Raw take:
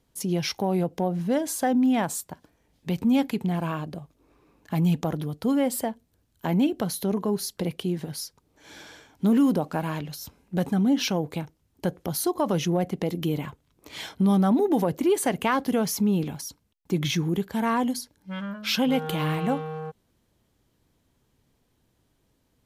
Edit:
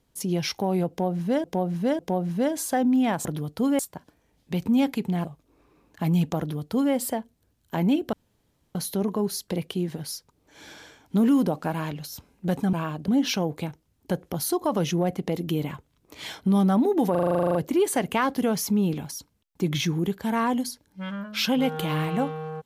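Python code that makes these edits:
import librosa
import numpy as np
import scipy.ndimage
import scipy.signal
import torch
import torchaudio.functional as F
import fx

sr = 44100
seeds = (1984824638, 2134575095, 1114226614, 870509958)

y = fx.edit(x, sr, fx.repeat(start_s=0.89, length_s=0.55, count=3),
    fx.move(start_s=3.61, length_s=0.35, to_s=10.82),
    fx.duplicate(start_s=5.1, length_s=0.54, to_s=2.15),
    fx.insert_room_tone(at_s=6.84, length_s=0.62),
    fx.stutter(start_s=14.85, slice_s=0.04, count=12), tone=tone)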